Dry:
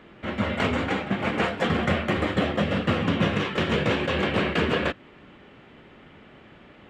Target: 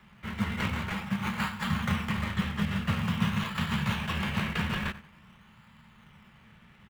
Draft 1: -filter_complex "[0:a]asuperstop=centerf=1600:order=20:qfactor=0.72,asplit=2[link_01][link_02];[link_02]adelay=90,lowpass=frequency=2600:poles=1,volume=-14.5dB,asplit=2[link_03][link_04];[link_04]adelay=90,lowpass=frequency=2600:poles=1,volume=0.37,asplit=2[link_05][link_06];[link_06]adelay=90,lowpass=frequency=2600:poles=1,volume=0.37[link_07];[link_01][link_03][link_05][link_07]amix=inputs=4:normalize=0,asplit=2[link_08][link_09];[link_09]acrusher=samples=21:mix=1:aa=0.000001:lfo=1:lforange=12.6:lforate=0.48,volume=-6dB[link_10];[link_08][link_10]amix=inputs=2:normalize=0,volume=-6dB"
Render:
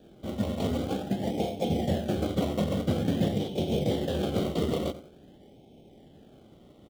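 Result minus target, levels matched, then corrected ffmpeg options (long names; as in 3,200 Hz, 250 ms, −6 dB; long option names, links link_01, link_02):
2,000 Hz band −14.0 dB
-filter_complex "[0:a]asuperstop=centerf=440:order=20:qfactor=0.72,asplit=2[link_01][link_02];[link_02]adelay=90,lowpass=frequency=2600:poles=1,volume=-14.5dB,asplit=2[link_03][link_04];[link_04]adelay=90,lowpass=frequency=2600:poles=1,volume=0.37,asplit=2[link_05][link_06];[link_06]adelay=90,lowpass=frequency=2600:poles=1,volume=0.37[link_07];[link_01][link_03][link_05][link_07]amix=inputs=4:normalize=0,asplit=2[link_08][link_09];[link_09]acrusher=samples=21:mix=1:aa=0.000001:lfo=1:lforange=12.6:lforate=0.48,volume=-6dB[link_10];[link_08][link_10]amix=inputs=2:normalize=0,volume=-6dB"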